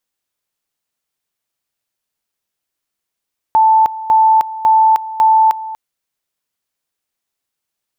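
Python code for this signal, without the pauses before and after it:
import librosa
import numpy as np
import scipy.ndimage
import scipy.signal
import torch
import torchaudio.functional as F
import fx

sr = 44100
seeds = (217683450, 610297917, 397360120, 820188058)

y = fx.two_level_tone(sr, hz=881.0, level_db=-6.5, drop_db=16.0, high_s=0.31, low_s=0.24, rounds=4)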